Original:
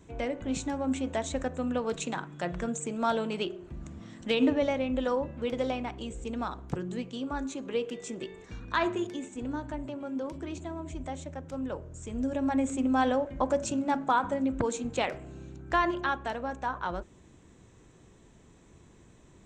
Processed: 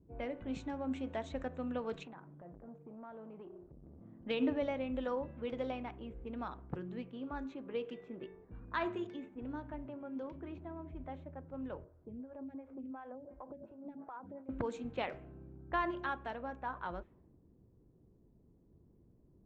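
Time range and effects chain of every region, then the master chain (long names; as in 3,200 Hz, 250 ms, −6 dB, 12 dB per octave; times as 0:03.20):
0:02.03–0:04.04: downward compressor 4 to 1, threshold −38 dBFS + saturating transformer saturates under 670 Hz
0:11.84–0:14.49: high-pass filter 72 Hz + downward compressor 12 to 1, threshold −33 dBFS + phaser with staggered stages 2.8 Hz
whole clip: low-pass filter 3,300 Hz 12 dB per octave; low-pass that shuts in the quiet parts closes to 360 Hz, open at −27.5 dBFS; level −8 dB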